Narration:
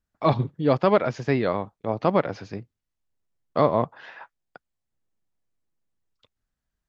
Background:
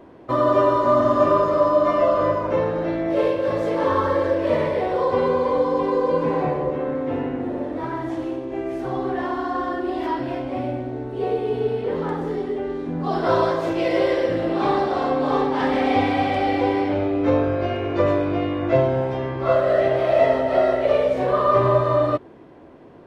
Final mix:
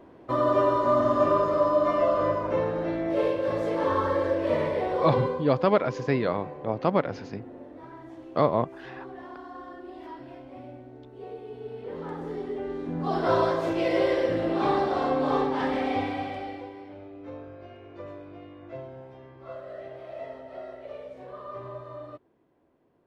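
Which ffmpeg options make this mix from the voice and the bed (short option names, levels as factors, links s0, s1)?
-filter_complex "[0:a]adelay=4800,volume=0.75[s0];[1:a]volume=2.51,afade=t=out:st=5.16:d=0.29:silence=0.251189,afade=t=in:st=11.61:d=1.49:silence=0.223872,afade=t=out:st=15.31:d=1.39:silence=0.125893[s1];[s0][s1]amix=inputs=2:normalize=0"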